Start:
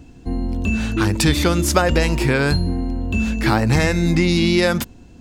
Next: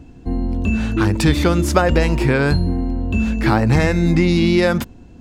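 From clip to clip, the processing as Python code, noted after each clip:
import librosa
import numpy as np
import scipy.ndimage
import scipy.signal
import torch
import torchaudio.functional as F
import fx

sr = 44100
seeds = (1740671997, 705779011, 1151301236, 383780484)

y = fx.high_shelf(x, sr, hz=2900.0, db=-8.5)
y = y * librosa.db_to_amplitude(2.0)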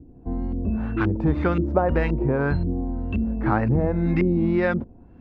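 y = fx.wow_flutter(x, sr, seeds[0], rate_hz=2.1, depth_cents=28.0)
y = fx.filter_lfo_lowpass(y, sr, shape='saw_up', hz=1.9, low_hz=360.0, high_hz=2500.0, q=1.3)
y = y * librosa.db_to_amplitude(-6.5)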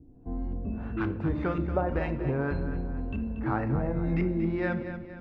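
y = fx.echo_feedback(x, sr, ms=234, feedback_pct=45, wet_db=-10)
y = fx.room_shoebox(y, sr, seeds[1], volume_m3=130.0, walls='mixed', distance_m=0.34)
y = y * librosa.db_to_amplitude(-8.0)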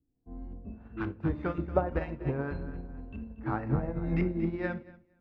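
y = fx.upward_expand(x, sr, threshold_db=-42.0, expansion=2.5)
y = y * librosa.db_to_amplitude(3.0)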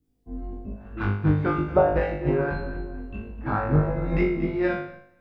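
y = fx.room_flutter(x, sr, wall_m=3.4, rt60_s=0.58)
y = y * librosa.db_to_amplitude(5.0)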